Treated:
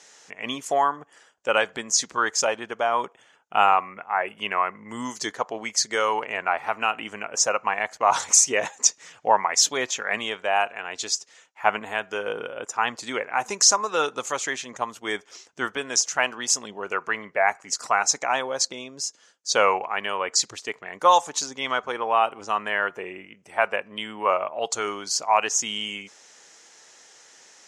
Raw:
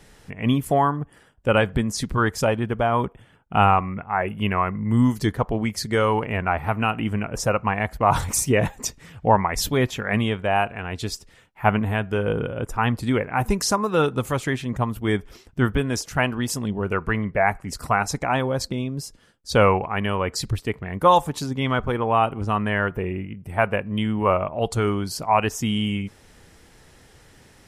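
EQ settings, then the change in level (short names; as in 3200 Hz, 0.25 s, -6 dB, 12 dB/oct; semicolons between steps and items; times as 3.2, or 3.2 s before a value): HPF 570 Hz 12 dB/oct; synth low-pass 6600 Hz, resonance Q 4.6; 0.0 dB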